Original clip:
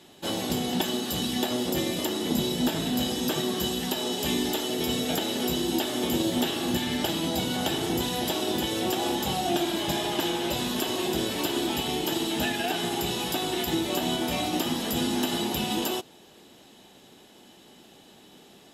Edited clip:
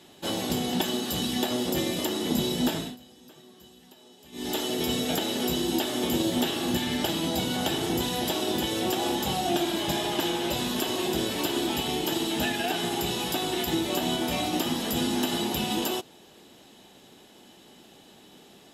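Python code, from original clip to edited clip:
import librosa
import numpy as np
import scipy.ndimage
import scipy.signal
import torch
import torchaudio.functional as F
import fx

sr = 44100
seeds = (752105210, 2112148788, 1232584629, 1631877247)

y = fx.edit(x, sr, fx.fade_down_up(start_s=2.72, length_s=1.85, db=-24.0, fade_s=0.25), tone=tone)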